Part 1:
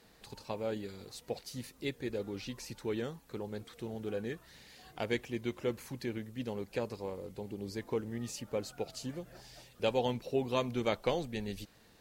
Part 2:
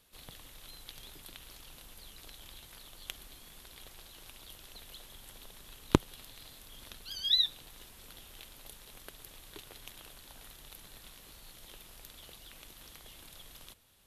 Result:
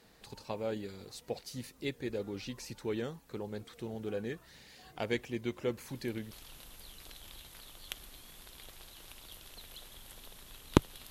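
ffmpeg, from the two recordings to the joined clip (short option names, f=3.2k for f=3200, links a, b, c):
-filter_complex "[1:a]asplit=2[a][b];[0:a]apad=whole_dur=11.1,atrim=end=11.1,atrim=end=6.312[c];[b]atrim=start=1.488:end=6.28[d];[a]atrim=start=1.06:end=1.49,asetpts=PTS-STARTPTS,volume=-7.5dB,afade=t=in:d=0.004:c=hsin,afade=t=out:st=0.426:d=0.004:c=hsin,adelay=5880[e];[c][d]acrossfade=d=0.004:c1=hsin:c2=hsin[f];[f][e]amix=inputs=2:normalize=0"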